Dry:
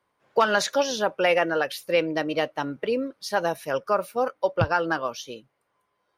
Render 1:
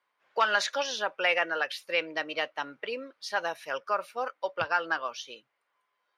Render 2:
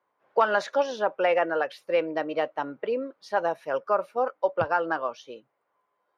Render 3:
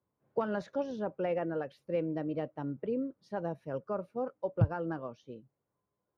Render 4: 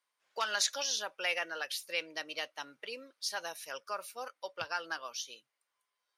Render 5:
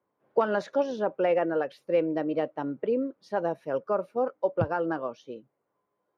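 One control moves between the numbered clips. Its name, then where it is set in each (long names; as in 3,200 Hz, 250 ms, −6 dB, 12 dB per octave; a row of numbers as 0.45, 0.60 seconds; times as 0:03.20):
resonant band-pass, frequency: 2,300, 790, 110, 6,900, 310 Hertz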